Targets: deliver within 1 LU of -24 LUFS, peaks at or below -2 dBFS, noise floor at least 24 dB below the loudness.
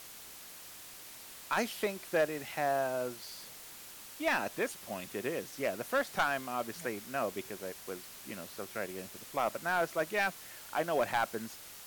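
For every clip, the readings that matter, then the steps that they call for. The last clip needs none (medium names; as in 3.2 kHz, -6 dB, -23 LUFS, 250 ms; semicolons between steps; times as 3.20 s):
clipped samples 0.4%; clipping level -22.5 dBFS; noise floor -50 dBFS; noise floor target -59 dBFS; loudness -35.0 LUFS; peak level -22.5 dBFS; loudness target -24.0 LUFS
-> clip repair -22.5 dBFS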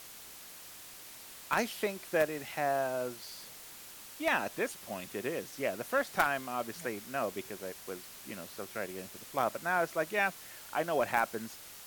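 clipped samples 0.0%; noise floor -50 dBFS; noise floor target -59 dBFS
-> noise reduction 9 dB, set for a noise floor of -50 dBFS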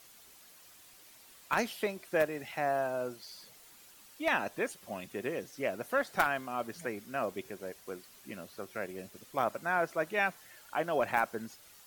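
noise floor -57 dBFS; noise floor target -58 dBFS
-> noise reduction 6 dB, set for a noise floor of -57 dBFS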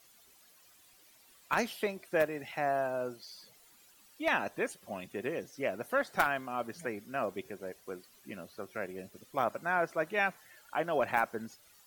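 noise floor -62 dBFS; loudness -34.0 LUFS; peak level -13.5 dBFS; loudness target -24.0 LUFS
-> trim +10 dB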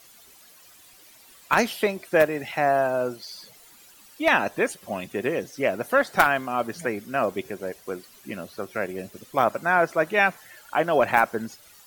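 loudness -24.0 LUFS; peak level -3.5 dBFS; noise floor -52 dBFS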